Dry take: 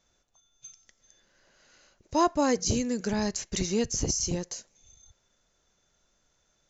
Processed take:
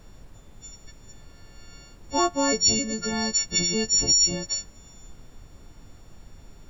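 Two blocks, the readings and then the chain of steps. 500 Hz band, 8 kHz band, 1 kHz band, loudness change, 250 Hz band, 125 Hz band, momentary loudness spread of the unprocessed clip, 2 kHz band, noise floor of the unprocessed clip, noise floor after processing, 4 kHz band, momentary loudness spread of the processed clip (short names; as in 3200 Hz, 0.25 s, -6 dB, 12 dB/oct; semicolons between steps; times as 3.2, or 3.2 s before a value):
0.0 dB, n/a, +1.0 dB, +6.5 dB, -0.5 dB, -1.5 dB, 8 LU, +6.0 dB, -72 dBFS, -50 dBFS, +13.0 dB, 11 LU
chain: frequency quantiser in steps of 4 st; added noise brown -45 dBFS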